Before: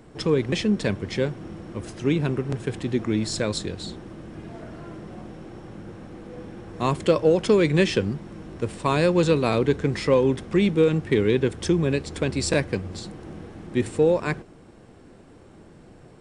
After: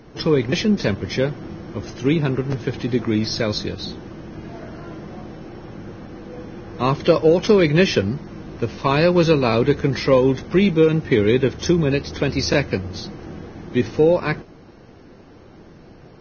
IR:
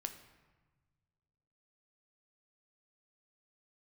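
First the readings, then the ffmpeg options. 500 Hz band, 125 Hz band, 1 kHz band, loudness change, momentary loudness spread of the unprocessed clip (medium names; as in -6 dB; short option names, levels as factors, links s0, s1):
+4.0 dB, +4.0 dB, +4.5 dB, +4.0 dB, 20 LU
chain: -af "volume=1.58" -ar 16000 -c:a libvorbis -b:a 16k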